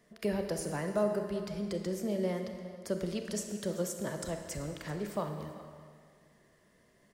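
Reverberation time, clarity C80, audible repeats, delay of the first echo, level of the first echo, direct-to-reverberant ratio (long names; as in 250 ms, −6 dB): 2.0 s, 7.0 dB, 1, 388 ms, −18.0 dB, 4.5 dB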